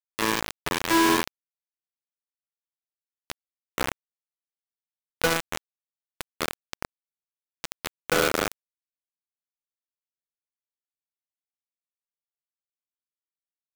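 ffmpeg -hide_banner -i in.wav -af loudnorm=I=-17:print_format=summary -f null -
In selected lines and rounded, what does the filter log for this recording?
Input Integrated:    -26.3 LUFS
Input True Peak:     -10.7 dBTP
Input LRA:             5.6 LU
Input Threshold:     -37.8 LUFS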